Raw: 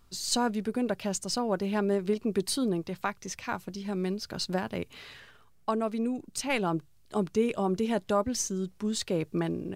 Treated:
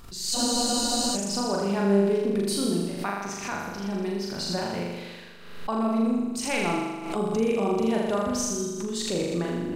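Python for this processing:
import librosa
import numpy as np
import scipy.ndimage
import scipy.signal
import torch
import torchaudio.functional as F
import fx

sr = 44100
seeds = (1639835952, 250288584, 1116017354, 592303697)

y = fx.room_flutter(x, sr, wall_m=6.9, rt60_s=1.3)
y = fx.spec_freeze(y, sr, seeds[0], at_s=0.36, hold_s=0.8)
y = fx.pre_swell(y, sr, db_per_s=65.0)
y = F.gain(torch.from_numpy(y), -1.5).numpy()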